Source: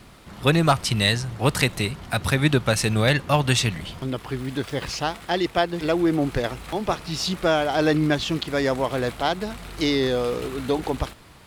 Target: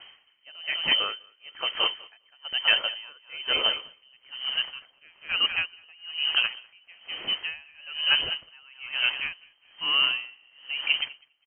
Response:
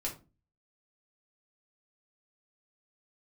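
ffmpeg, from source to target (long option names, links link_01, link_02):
-filter_complex "[0:a]lowpass=frequency=2700:width_type=q:width=0.5098,lowpass=frequency=2700:width_type=q:width=0.6013,lowpass=frequency=2700:width_type=q:width=0.9,lowpass=frequency=2700:width_type=q:width=2.563,afreqshift=-3200,asettb=1/sr,asplit=3[link_01][link_02][link_03];[link_01]atrim=end=1.904[link_04];[link_02]atrim=start=1.9:end=2.45,asetpts=PTS-STARTPTS,afade=type=in:duration=0.004:curve=qsin,afade=type=out:start_time=0.546:duration=0.004:curve=qsin,acompressor=threshold=-31dB:ratio=2.5[link_05];[link_03]atrim=start=2.446[link_06];[link_04][link_05]acrossfade=duration=0.004:curve1=hsin:curve2=qsin[link_07];[link_07][link_06]acrossfade=duration=0.004:curve1=qsin:curve2=hsin,asplit=2[link_08][link_09];[link_09]aecho=0:1:201|402|603|804|1005:0.355|0.145|0.0596|0.0245|0.01[link_10];[link_08][link_10]amix=inputs=2:normalize=0,aeval=exprs='val(0)*pow(10,-31*(0.5-0.5*cos(2*PI*1.1*n/s))/20)':channel_layout=same"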